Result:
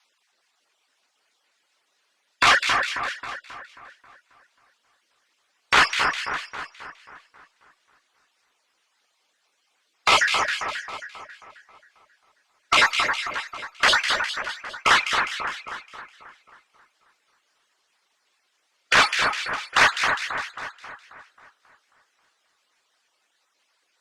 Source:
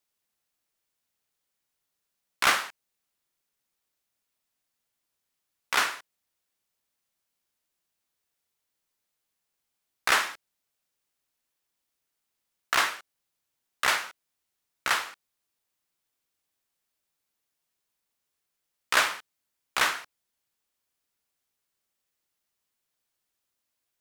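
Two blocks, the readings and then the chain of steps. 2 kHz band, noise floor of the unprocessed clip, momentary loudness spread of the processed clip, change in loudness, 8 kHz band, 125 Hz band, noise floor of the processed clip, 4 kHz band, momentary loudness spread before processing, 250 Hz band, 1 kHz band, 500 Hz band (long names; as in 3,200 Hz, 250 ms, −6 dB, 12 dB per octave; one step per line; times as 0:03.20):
+8.5 dB, −82 dBFS, 18 LU, +5.5 dB, +3.5 dB, +13.0 dB, −71 dBFS, +9.0 dB, 17 LU, +9.0 dB, +9.0 dB, +8.5 dB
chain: time-frequency cells dropped at random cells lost 25%
reverb reduction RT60 1.2 s
high-pass filter 260 Hz 12 dB per octave
reverb reduction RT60 0.65 s
in parallel at −4 dB: sine wavefolder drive 11 dB, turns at −8 dBFS
on the sum: mid-hump overdrive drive 15 dB, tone 7,400 Hz, clips at −11 dBFS
high-frequency loss of the air 81 metres
echo with a time of its own for lows and highs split 1,900 Hz, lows 269 ms, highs 204 ms, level −5 dB
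Opus 64 kbit/s 48,000 Hz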